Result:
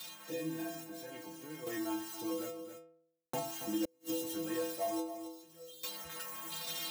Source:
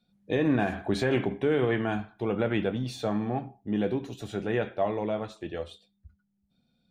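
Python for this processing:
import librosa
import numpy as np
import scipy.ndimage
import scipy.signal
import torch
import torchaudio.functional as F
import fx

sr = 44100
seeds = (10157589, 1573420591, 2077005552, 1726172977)

p1 = x + 0.5 * 10.0 ** (-25.0 / 20.0) * np.diff(np.sign(x), prepend=np.sign(x[:1]))
p2 = fx.tremolo_random(p1, sr, seeds[0], hz=1.2, depth_pct=100)
p3 = p2 + 10.0 ** (-15.0 / 20.0) * np.pad(p2, (int(273 * sr / 1000.0), 0))[:len(p2)]
p4 = 10.0 ** (-33.5 / 20.0) * (np.abs((p3 / 10.0 ** (-33.5 / 20.0) + 3.0) % 4.0 - 2.0) - 1.0)
p5 = p3 + F.gain(torch.from_numpy(p4), -7.0).numpy()
p6 = scipy.signal.sosfilt(scipy.signal.butter(2, 75.0, 'highpass', fs=sr, output='sos'), p5)
p7 = fx.stiff_resonator(p6, sr, f0_hz=160.0, decay_s=0.59, stiffness=0.008)
p8 = fx.gate_flip(p7, sr, shuts_db=-34.0, range_db=-40)
p9 = p8 + 0.4 * np.pad(p8, (int(3.5 * sr / 1000.0), 0))[:len(p8)]
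p10 = fx.band_squash(p9, sr, depth_pct=70)
y = F.gain(torch.from_numpy(p10), 12.5).numpy()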